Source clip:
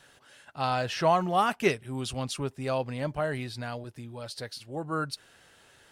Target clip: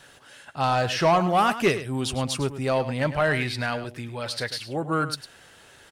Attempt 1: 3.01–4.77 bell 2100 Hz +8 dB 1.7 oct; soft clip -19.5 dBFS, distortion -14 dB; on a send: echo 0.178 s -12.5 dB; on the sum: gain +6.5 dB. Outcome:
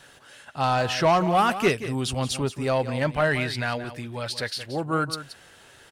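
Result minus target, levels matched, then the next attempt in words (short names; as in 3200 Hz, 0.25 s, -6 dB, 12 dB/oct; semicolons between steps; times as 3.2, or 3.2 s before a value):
echo 74 ms late
3.01–4.77 bell 2100 Hz +8 dB 1.7 oct; soft clip -19.5 dBFS, distortion -14 dB; on a send: echo 0.104 s -12.5 dB; on the sum: gain +6.5 dB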